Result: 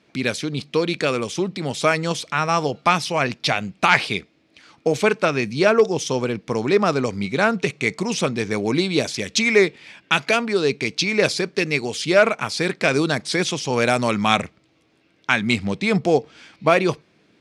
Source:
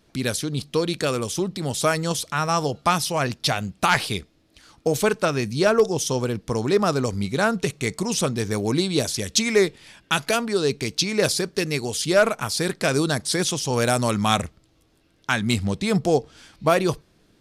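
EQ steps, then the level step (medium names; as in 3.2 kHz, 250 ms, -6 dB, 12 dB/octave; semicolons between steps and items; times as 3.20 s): high-pass 150 Hz 12 dB/octave; distance through air 78 m; peaking EQ 2.3 kHz +7.5 dB 0.47 oct; +2.5 dB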